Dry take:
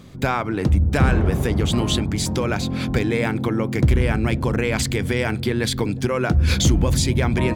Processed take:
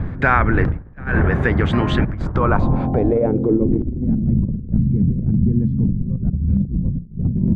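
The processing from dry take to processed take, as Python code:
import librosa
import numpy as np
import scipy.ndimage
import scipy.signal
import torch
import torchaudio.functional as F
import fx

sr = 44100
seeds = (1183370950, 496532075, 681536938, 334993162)

y = fx.dmg_wind(x, sr, seeds[0], corner_hz=120.0, level_db=-15.0)
y = fx.filter_sweep_lowpass(y, sr, from_hz=1700.0, to_hz=190.0, start_s=2.12, end_s=4.27, q=3.5)
y = fx.over_compress(y, sr, threshold_db=-16.0, ratio=-0.5)
y = fx.high_shelf(y, sr, hz=7600.0, db=10.0)
y = y * 10.0 ** (-1.5 / 20.0)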